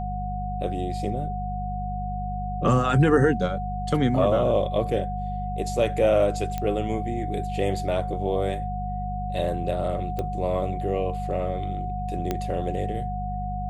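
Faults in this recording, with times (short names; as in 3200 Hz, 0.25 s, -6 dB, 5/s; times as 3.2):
hum 50 Hz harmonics 4 -31 dBFS
tone 730 Hz -31 dBFS
6.58 pop -15 dBFS
10.19 pop -17 dBFS
12.31 pop -12 dBFS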